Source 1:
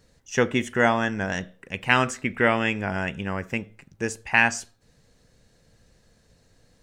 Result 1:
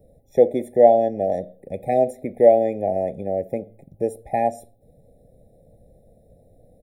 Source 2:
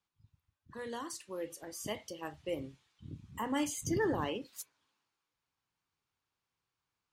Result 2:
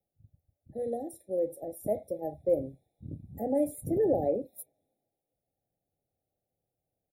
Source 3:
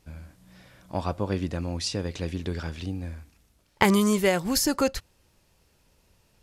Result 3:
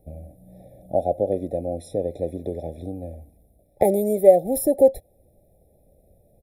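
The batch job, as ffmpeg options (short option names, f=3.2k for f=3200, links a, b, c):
-filter_complex "[0:a]firequalizer=gain_entry='entry(400,0);entry(580,9);entry(1400,-27);entry(3200,-19);entry(6500,-27);entry(10000,0)':delay=0.05:min_phase=1,acrossover=split=310|5900[a][b][c];[a]acompressor=threshold=-41dB:ratio=6[d];[d][b][c]amix=inputs=3:normalize=0,afftfilt=real='re*eq(mod(floor(b*sr/1024/840),2),0)':imag='im*eq(mod(floor(b*sr/1024/840),2),0)':win_size=1024:overlap=0.75,volume=6dB"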